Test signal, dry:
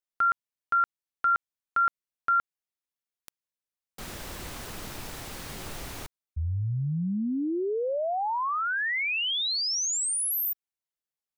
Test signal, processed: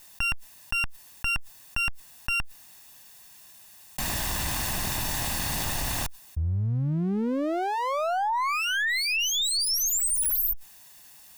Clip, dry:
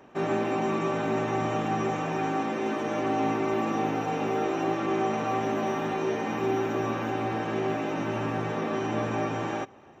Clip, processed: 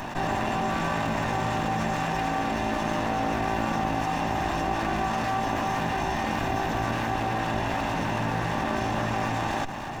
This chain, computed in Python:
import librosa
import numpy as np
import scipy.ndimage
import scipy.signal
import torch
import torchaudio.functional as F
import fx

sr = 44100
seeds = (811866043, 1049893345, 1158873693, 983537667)

y = fx.lower_of_two(x, sr, delay_ms=1.1)
y = fx.high_shelf(y, sr, hz=6600.0, db=5.0)
y = fx.env_flatten(y, sr, amount_pct=70)